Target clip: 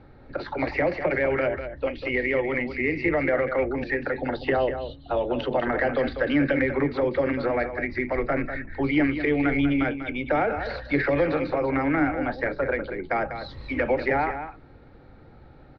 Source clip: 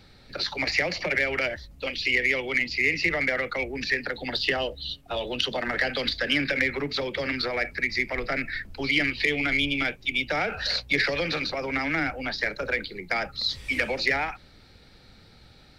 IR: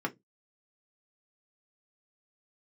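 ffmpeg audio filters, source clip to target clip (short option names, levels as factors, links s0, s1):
-filter_complex "[0:a]lowpass=1100,aecho=1:1:195:0.335,asplit=2[s0][s1];[1:a]atrim=start_sample=2205[s2];[s1][s2]afir=irnorm=-1:irlink=0,volume=0.188[s3];[s0][s3]amix=inputs=2:normalize=0,volume=1.68"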